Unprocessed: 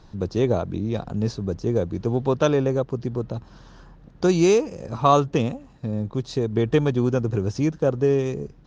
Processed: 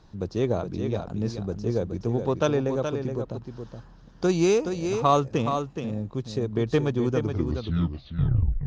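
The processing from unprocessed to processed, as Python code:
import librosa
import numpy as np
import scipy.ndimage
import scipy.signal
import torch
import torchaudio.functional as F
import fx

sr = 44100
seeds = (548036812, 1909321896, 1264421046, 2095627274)

y = fx.tape_stop_end(x, sr, length_s=1.54)
y = fx.cheby_harmonics(y, sr, harmonics=(7,), levels_db=(-35,), full_scale_db=-4.0)
y = y + 10.0 ** (-7.0 / 20.0) * np.pad(y, (int(422 * sr / 1000.0), 0))[:len(y)]
y = F.gain(torch.from_numpy(y), -3.5).numpy()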